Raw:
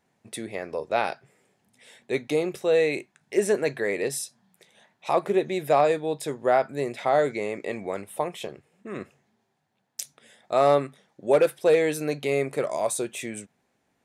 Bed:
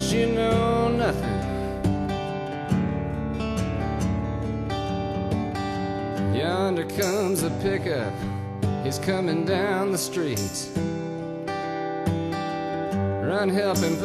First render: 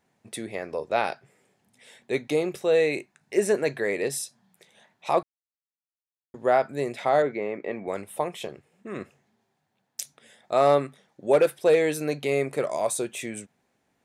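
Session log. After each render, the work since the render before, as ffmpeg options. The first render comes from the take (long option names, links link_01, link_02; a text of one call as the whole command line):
ffmpeg -i in.wav -filter_complex "[0:a]asettb=1/sr,asplit=3[link_01][link_02][link_03];[link_01]atrim=end=2.864[link_04];[link_02]atrim=start=2.86:end=3.57,asetpts=PTS-STARTPTS,afade=type=in:duration=0.004:curve=qsin,afade=type=out:start_time=0.706:duration=0.004:curve=qsin,bandreject=frequency=3300:width=12[link_05];[link_03]atrim=start=3.566[link_06];[link_04][link_05]acrossfade=duration=0.004:curve1=hsin:curve2=qsin[link_07];[link_07][link_06]acrossfade=duration=0.004:curve1=qsin:curve2=hsin,asettb=1/sr,asplit=3[link_08][link_09][link_10];[link_08]atrim=end=7.224[link_11];[link_09]atrim=start=7.22:end=7.88,asetpts=PTS-STARTPTS,afade=type=in:duration=0.004:curve=qsin,afade=type=out:start_time=0.656:duration=0.004:curve=qsin,highpass=140,lowpass=2200[link_12];[link_10]atrim=start=7.876[link_13];[link_11][link_12]acrossfade=duration=0.004:curve1=hsin:curve2=qsin[link_14];[link_14][link_13]acrossfade=duration=0.004:curve1=qsin:curve2=hsin,asplit=3[link_15][link_16][link_17];[link_15]atrim=end=5.23,asetpts=PTS-STARTPTS,afade=type=out:start_time=5.226:duration=0.004:curve=hsin[link_18];[link_16]atrim=start=5.23:end=6.34,asetpts=PTS-STARTPTS,volume=0[link_19];[link_17]atrim=start=6.34,asetpts=PTS-STARTPTS,afade=type=in:duration=0.004:curve=hsin[link_20];[link_18][link_19][link_20]concat=n=3:v=0:a=1" out.wav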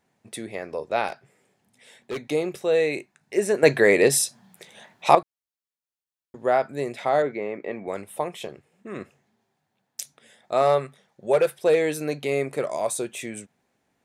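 ffmpeg -i in.wav -filter_complex "[0:a]asettb=1/sr,asplit=3[link_01][link_02][link_03];[link_01]atrim=end=1.084[link_04];[link_02]atrim=start=1.08:end=2.24,asetpts=PTS-STARTPTS,afade=type=in:duration=0.004:curve=qsin,afade=type=out:start_time=1.156:duration=0.004:curve=qsin,asoftclip=type=hard:threshold=-26.5dB[link_05];[link_03]atrim=start=2.236[link_06];[link_04][link_05]acrossfade=duration=0.004:curve1=hsin:curve2=qsin[link_07];[link_07][link_06]acrossfade=duration=0.004:curve1=qsin:curve2=hsin,asettb=1/sr,asplit=3[link_08][link_09][link_10];[link_08]atrim=end=10.624[link_11];[link_09]atrim=start=10.62:end=11.62,asetpts=PTS-STARTPTS,afade=type=in:duration=0.004:curve=qsin,afade=type=out:start_time=0.996:duration=0.004:curve=qsin,equalizer=frequency=290:width_type=o:width=0.23:gain=-15[link_12];[link_10]atrim=start=11.616[link_13];[link_11][link_12]acrossfade=duration=0.004:curve1=hsin:curve2=qsin[link_14];[link_14][link_13]acrossfade=duration=0.004:curve1=qsin:curve2=hsin,asplit=3[link_15][link_16][link_17];[link_15]atrim=end=3.632[link_18];[link_16]atrim=start=3.628:end=5.152,asetpts=PTS-STARTPTS,volume=10dB[link_19];[link_17]atrim=start=5.148[link_20];[link_18][link_19]acrossfade=duration=0.004:curve1=hsin:curve2=hsin[link_21];[link_21][link_20]acrossfade=duration=0.004:curve1=hsin:curve2=hsin" out.wav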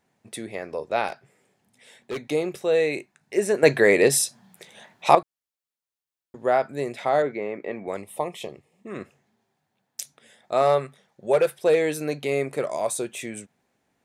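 ffmpeg -i in.wav -filter_complex "[0:a]asettb=1/sr,asplit=3[link_01][link_02][link_03];[link_01]atrim=end=7.974[link_04];[link_02]atrim=start=7.97:end=8.91,asetpts=PTS-STARTPTS,afade=type=in:duration=0.004:curve=qsin,afade=type=out:start_time=0.936:duration=0.004:curve=qsin,asuperstop=centerf=1500:order=4:qfactor=3.1[link_05];[link_03]atrim=start=8.906[link_06];[link_04][link_05]acrossfade=duration=0.004:curve1=hsin:curve2=qsin[link_07];[link_07][link_06]acrossfade=duration=0.004:curve1=qsin:curve2=hsin" out.wav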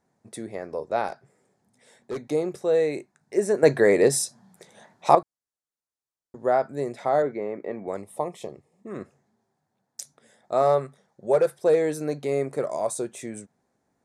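ffmpeg -i in.wav -af "lowpass=9200,equalizer=frequency=2800:width=1.3:gain=-13" out.wav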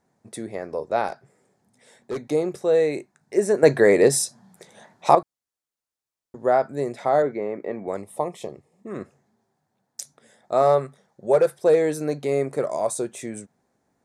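ffmpeg -i in.wav -af "volume=2.5dB,alimiter=limit=-2dB:level=0:latency=1" out.wav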